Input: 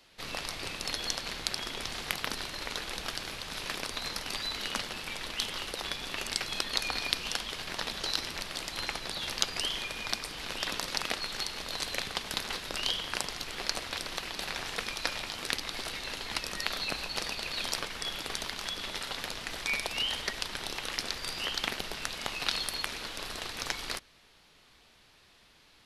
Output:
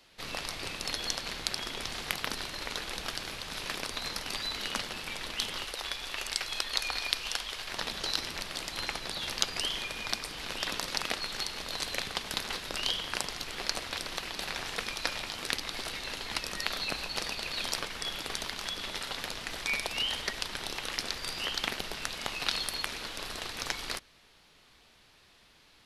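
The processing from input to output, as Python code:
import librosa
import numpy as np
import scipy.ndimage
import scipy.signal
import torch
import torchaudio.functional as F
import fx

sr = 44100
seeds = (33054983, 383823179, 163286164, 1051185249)

y = fx.peak_eq(x, sr, hz=180.0, db=-10.5, octaves=2.2, at=(5.64, 7.73))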